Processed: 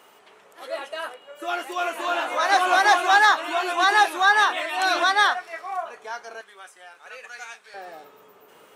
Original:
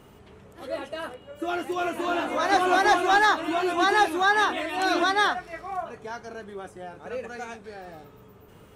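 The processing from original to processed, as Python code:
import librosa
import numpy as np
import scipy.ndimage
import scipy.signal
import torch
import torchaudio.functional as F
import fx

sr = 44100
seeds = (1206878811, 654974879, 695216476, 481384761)

y = fx.highpass(x, sr, hz=fx.steps((0.0, 680.0), (6.41, 1400.0), (7.74, 490.0)), slope=12)
y = y * 10.0 ** (4.5 / 20.0)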